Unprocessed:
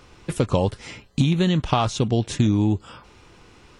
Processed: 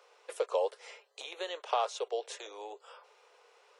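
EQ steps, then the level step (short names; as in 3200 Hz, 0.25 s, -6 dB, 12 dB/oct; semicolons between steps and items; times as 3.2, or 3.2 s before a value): steep high-pass 440 Hz 72 dB/oct; tilt shelf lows +5.5 dB, about 650 Hz; -6.5 dB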